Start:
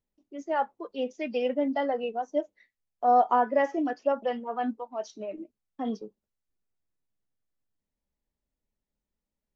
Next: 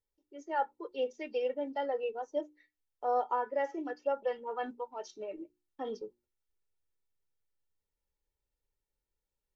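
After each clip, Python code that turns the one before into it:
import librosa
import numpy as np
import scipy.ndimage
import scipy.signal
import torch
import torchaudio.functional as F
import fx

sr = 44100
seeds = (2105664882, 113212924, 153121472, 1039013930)

y = fx.hum_notches(x, sr, base_hz=60, count=6)
y = y + 0.7 * np.pad(y, (int(2.2 * sr / 1000.0), 0))[:len(y)]
y = fx.rider(y, sr, range_db=3, speed_s=0.5)
y = y * librosa.db_to_amplitude(-7.5)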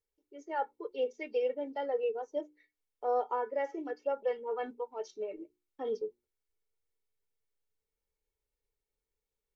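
y = fx.small_body(x, sr, hz=(440.0, 2200.0), ring_ms=45, db=10)
y = y * librosa.db_to_amplitude(-2.5)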